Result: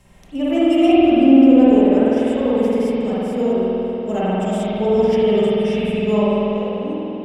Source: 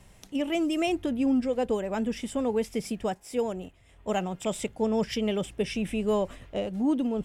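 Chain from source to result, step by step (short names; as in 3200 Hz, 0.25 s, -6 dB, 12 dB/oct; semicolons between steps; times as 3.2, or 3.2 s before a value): ending faded out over 1.41 s; harmonic-percussive split percussive -9 dB; spring tank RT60 3.6 s, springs 48 ms, chirp 35 ms, DRR -9.5 dB; gain +3 dB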